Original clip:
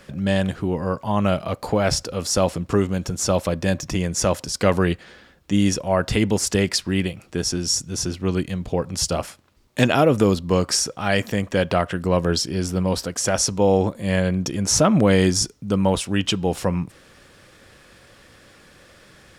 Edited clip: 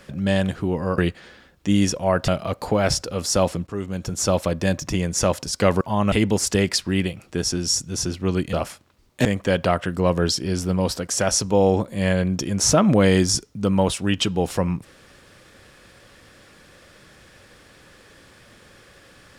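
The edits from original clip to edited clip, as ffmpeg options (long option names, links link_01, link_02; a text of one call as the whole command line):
ffmpeg -i in.wav -filter_complex "[0:a]asplit=8[link_01][link_02][link_03][link_04][link_05][link_06][link_07][link_08];[link_01]atrim=end=0.982[link_09];[link_02]atrim=start=4.818:end=6.122[link_10];[link_03]atrim=start=1.288:end=2.68,asetpts=PTS-STARTPTS,afade=type=out:start_time=1.388:duration=0.004:curve=hsin:silence=0.16788[link_11];[link_04]atrim=start=2.68:end=4.822,asetpts=PTS-STARTPTS,afade=type=in:duration=0.52:silence=0.16788[link_12];[link_05]atrim=start=0.978:end=1.292[link_13];[link_06]atrim=start=6.118:end=8.532[link_14];[link_07]atrim=start=9.108:end=9.832[link_15];[link_08]atrim=start=11.318[link_16];[link_09][link_10]acrossfade=duration=0.004:curve1=hsin:curve2=hsin[link_17];[link_11][link_12]concat=n=2:v=0:a=1[link_18];[link_17][link_18]acrossfade=duration=0.004:curve1=hsin:curve2=hsin[link_19];[link_19][link_13]acrossfade=duration=0.004:curve1=hsin:curve2=hsin[link_20];[link_20][link_14]acrossfade=duration=0.004:curve1=hsin:curve2=hsin[link_21];[link_21][link_15]acrossfade=duration=0.004:curve1=hsin:curve2=hsin[link_22];[link_22][link_16]acrossfade=duration=0.004:curve1=hsin:curve2=hsin" out.wav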